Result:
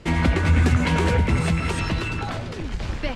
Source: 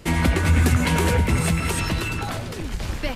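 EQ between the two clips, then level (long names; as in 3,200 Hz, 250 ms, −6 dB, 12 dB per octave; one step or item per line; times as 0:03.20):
high-frequency loss of the air 82 metres
0.0 dB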